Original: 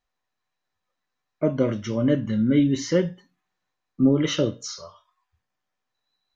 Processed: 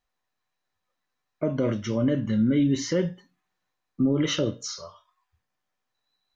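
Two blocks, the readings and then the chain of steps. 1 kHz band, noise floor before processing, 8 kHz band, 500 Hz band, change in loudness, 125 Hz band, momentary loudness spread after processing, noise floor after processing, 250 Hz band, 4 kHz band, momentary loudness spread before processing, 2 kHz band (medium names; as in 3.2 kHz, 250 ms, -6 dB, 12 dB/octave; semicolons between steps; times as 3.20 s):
-2.0 dB, -81 dBFS, no reading, -3.5 dB, -2.5 dB, -2.0 dB, 10 LU, -81 dBFS, -2.5 dB, -0.5 dB, 11 LU, -1.5 dB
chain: peak limiter -14.5 dBFS, peak gain reduction 6.5 dB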